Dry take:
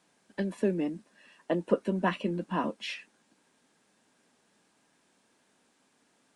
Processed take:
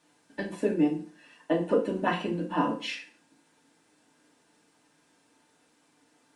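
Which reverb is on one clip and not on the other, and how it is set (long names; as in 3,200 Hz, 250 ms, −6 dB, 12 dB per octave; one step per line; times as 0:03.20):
feedback delay network reverb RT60 0.43 s, low-frequency decay 1×, high-frequency decay 0.85×, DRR −2.5 dB
level −1.5 dB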